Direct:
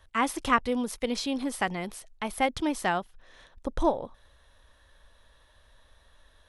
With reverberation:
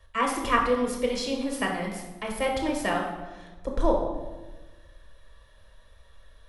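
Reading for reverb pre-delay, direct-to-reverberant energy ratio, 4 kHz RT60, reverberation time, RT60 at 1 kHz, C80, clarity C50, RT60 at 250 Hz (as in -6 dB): 6 ms, 0.0 dB, 0.80 s, 1.2 s, 1.1 s, 7.0 dB, 4.5 dB, 1.6 s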